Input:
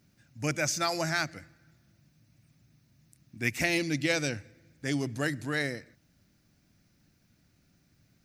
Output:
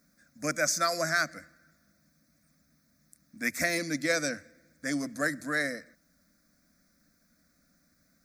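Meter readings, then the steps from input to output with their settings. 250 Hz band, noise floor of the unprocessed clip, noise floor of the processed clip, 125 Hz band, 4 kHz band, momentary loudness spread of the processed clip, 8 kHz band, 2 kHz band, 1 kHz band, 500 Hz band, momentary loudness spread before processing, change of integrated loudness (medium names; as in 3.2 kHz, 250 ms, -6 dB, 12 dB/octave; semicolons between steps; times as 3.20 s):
-1.5 dB, -68 dBFS, -70 dBFS, -8.5 dB, -1.0 dB, 10 LU, +3.0 dB, +2.0 dB, +2.5 dB, +1.0 dB, 9 LU, +0.5 dB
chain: bass shelf 340 Hz -6.5 dB; static phaser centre 580 Hz, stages 8; trim +5 dB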